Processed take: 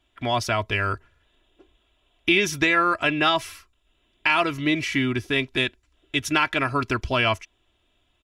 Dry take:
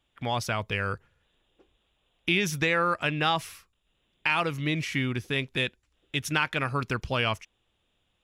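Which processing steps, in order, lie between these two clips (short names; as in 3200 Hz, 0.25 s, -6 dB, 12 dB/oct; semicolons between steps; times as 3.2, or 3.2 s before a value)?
high shelf 11000 Hz -8.5 dB; comb 3 ms, depth 63%; gain +4.5 dB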